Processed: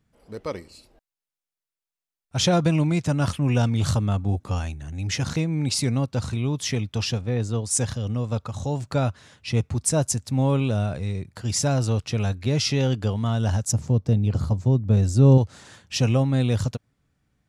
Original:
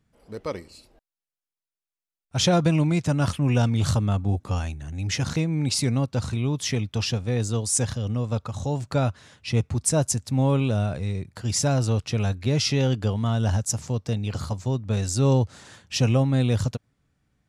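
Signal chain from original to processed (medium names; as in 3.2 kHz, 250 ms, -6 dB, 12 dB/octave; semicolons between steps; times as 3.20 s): 7.21–7.71 s: low-pass 2.8 kHz 6 dB/octave; 13.72–15.38 s: tilt shelf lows +7 dB, about 690 Hz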